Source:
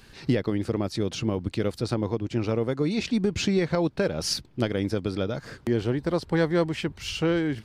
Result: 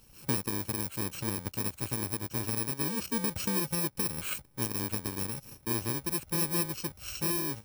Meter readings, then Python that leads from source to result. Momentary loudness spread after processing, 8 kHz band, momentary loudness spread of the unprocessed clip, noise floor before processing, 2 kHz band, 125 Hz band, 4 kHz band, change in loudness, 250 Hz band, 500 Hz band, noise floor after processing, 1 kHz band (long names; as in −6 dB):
5 LU, +5.0 dB, 4 LU, −52 dBFS, −6.0 dB, −8.0 dB, −6.0 dB, −4.5 dB, −10.0 dB, −14.0 dB, −59 dBFS, −4.0 dB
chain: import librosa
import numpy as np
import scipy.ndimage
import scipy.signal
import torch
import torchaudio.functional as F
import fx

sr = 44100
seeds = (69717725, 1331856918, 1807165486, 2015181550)

y = fx.bit_reversed(x, sr, seeds[0], block=64)
y = y * librosa.db_to_amplitude(-7.0)